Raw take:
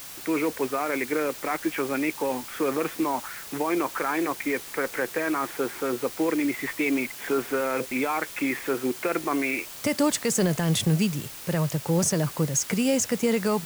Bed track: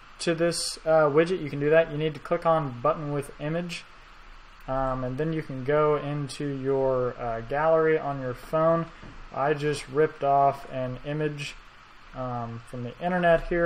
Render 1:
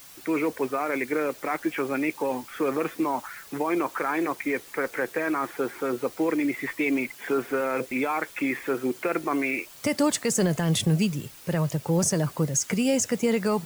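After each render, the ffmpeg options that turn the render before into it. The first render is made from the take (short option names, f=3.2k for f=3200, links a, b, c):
-af "afftdn=nr=8:nf=-41"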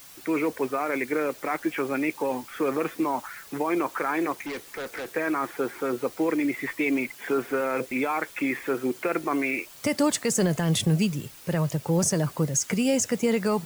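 -filter_complex "[0:a]asettb=1/sr,asplit=3[a][b][c];[a]atrim=end=4.324[d];[b]atrim=start=4.32:end=5.16,asetpts=PTS-STARTPTS,afade=t=in:d=0.004:c=qsin,afade=t=out:st=0.836:d=0.004:c=qsin,asoftclip=type=hard:threshold=-31dB[e];[c]atrim=start=5.156[f];[d][e]acrossfade=d=0.004:c1=hsin:c2=qsin[g];[g][f]acrossfade=d=0.004:c1=qsin:c2=hsin"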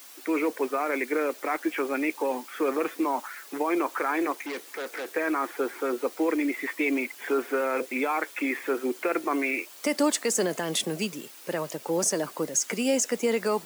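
-af "highpass=f=260:w=0.5412,highpass=f=260:w=1.3066"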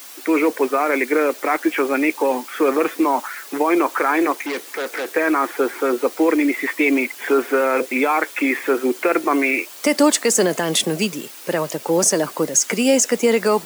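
-af "volume=9dB"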